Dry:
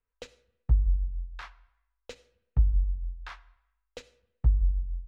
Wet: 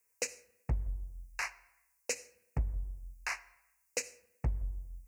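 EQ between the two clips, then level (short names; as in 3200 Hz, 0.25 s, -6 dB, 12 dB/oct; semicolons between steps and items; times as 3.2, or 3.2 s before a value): HPF 610 Hz 6 dB/oct; Butterworth band-stop 3400 Hz, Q 0.71; resonant high shelf 1900 Hz +12 dB, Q 3; +10.0 dB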